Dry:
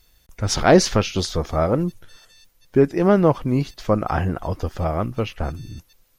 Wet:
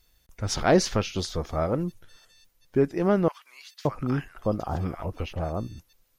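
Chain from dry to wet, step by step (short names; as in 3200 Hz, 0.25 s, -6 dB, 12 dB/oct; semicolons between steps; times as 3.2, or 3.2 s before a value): 3.28–5.68 bands offset in time highs, lows 0.57 s, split 1200 Hz; gain -6.5 dB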